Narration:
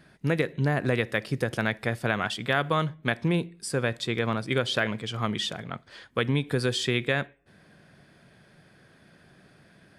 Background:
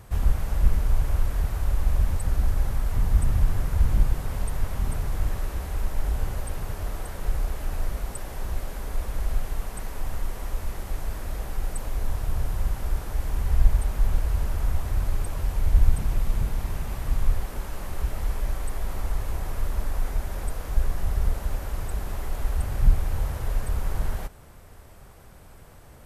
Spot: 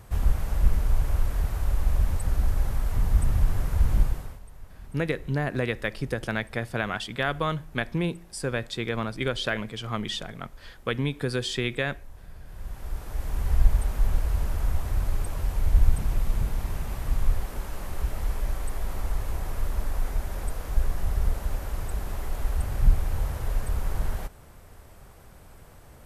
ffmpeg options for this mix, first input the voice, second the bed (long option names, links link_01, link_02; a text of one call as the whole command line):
ffmpeg -i stem1.wav -i stem2.wav -filter_complex "[0:a]adelay=4700,volume=-2dB[link_01];[1:a]volume=16.5dB,afade=type=out:start_time=4:duration=0.4:silence=0.133352,afade=type=in:start_time=12.45:duration=1.04:silence=0.133352[link_02];[link_01][link_02]amix=inputs=2:normalize=0" out.wav